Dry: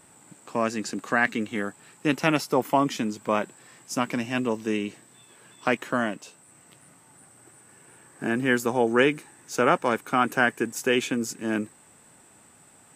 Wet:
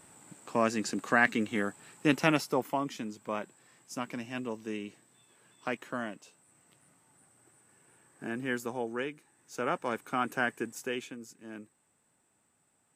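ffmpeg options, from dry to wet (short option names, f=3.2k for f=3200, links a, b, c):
-af "volume=7.5dB,afade=t=out:st=2.14:d=0.65:silence=0.375837,afade=t=out:st=8.63:d=0.53:silence=0.421697,afade=t=in:st=9.16:d=0.83:silence=0.334965,afade=t=out:st=10.63:d=0.54:silence=0.334965"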